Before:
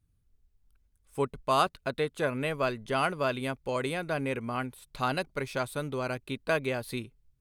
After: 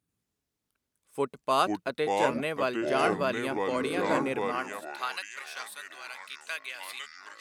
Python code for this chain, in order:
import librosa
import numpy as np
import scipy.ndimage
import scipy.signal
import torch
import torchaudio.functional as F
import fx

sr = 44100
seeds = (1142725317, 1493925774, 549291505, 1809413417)

y = fx.echo_pitch(x, sr, ms=91, semitones=-5, count=3, db_per_echo=-3.0)
y = fx.filter_sweep_highpass(y, sr, from_hz=220.0, to_hz=2000.0, start_s=4.33, end_s=5.27, q=0.77)